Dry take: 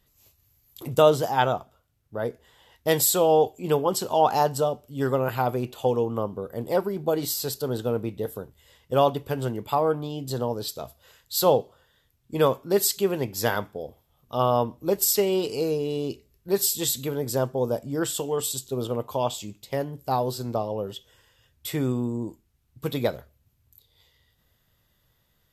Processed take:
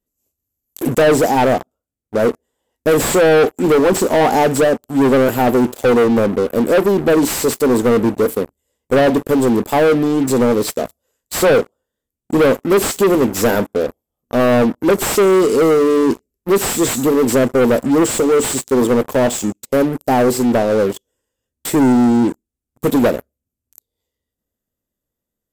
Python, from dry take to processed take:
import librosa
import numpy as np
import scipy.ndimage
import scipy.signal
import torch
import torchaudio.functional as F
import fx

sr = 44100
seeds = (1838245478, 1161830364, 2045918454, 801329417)

y = fx.graphic_eq_10(x, sr, hz=(125, 250, 500, 1000, 2000, 4000, 8000), db=(-7, 11, 5, -3, -4, -9, 9))
y = fx.leveller(y, sr, passes=5)
y = fx.slew_limit(y, sr, full_power_hz=1300.0)
y = y * 10.0 ** (-5.5 / 20.0)